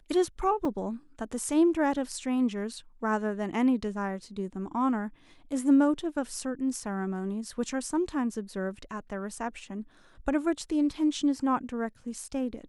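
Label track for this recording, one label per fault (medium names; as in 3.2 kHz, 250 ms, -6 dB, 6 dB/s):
0.650000	0.650000	dropout 2.6 ms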